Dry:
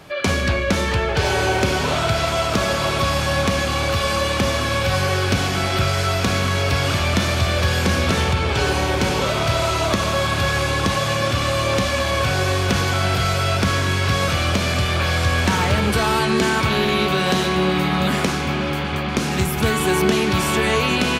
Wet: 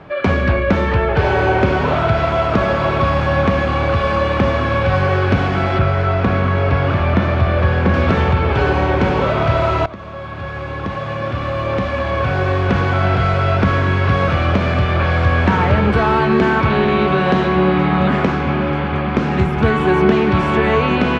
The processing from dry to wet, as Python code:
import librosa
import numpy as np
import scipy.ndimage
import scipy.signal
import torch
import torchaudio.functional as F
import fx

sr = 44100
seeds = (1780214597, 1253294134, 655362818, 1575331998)

y = fx.lowpass(x, sr, hz=2800.0, slope=6, at=(5.78, 7.94))
y = fx.edit(y, sr, fx.fade_in_from(start_s=9.86, length_s=3.21, floor_db=-18.5), tone=tone)
y = scipy.signal.sosfilt(scipy.signal.butter(2, 1800.0, 'lowpass', fs=sr, output='sos'), y)
y = y * librosa.db_to_amplitude(5.0)